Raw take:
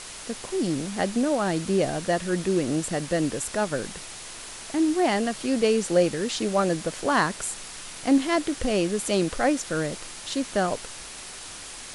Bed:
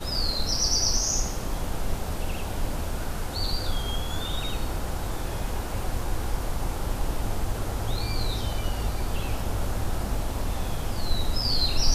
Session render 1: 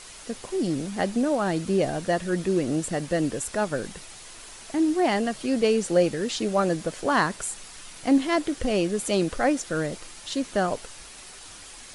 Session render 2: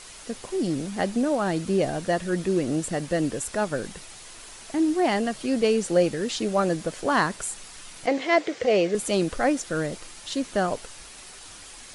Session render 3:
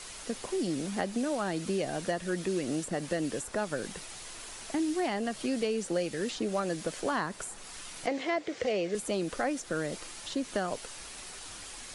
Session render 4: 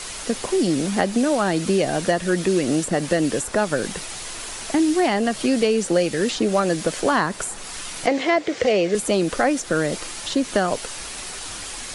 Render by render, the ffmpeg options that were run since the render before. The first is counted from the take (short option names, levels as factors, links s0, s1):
-af "afftdn=nr=6:nf=-40"
-filter_complex "[0:a]asettb=1/sr,asplit=3[s0][s1][s2];[s0]atrim=end=8.064[s3];[s1]atrim=start=8.06:end=8.95,asetpts=PTS-STARTPTS,afade=t=in:d=0.004:c=qsin,afade=t=out:st=0.886:d=0.004:c=qsin,highpass=160,equalizer=f=270:t=q:w=4:g=-10,equalizer=f=470:t=q:w=4:g=10,equalizer=f=670:t=q:w=4:g=5,equalizer=f=2100:t=q:w=4:g=8,lowpass=f=6900:w=0.5412,lowpass=f=6900:w=1.3066[s4];[s2]atrim=start=8.946[s5];[s3][s4]acrossfade=d=0.004:c1=hsin:c2=qsin[s6];[s6][s5]acrossfade=d=0.004:c1=qsin:c2=hsin"
-filter_complex "[0:a]acrossover=split=170|1600[s0][s1][s2];[s0]acompressor=threshold=0.00355:ratio=4[s3];[s1]acompressor=threshold=0.0316:ratio=4[s4];[s2]acompressor=threshold=0.01:ratio=4[s5];[s3][s4][s5]amix=inputs=3:normalize=0"
-af "volume=3.76"